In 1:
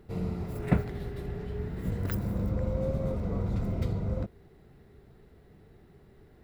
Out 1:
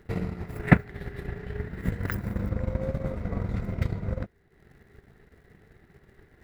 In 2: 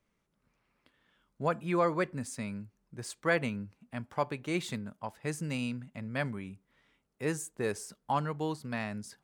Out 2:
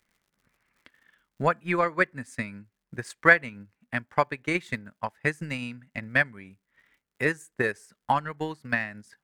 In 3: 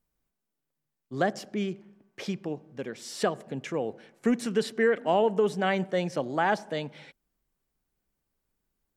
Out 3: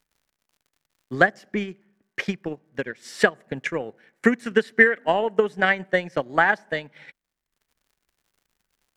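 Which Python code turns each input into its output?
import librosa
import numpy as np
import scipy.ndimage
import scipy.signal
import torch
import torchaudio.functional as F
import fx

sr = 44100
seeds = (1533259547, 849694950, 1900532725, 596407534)

y = fx.peak_eq(x, sr, hz=1800.0, db=11.5, octaves=0.87)
y = fx.dmg_crackle(y, sr, seeds[0], per_s=130.0, level_db=-56.0)
y = fx.transient(y, sr, attack_db=10, sustain_db=-8)
y = y * 10.0 ** (-2.0 / 20.0)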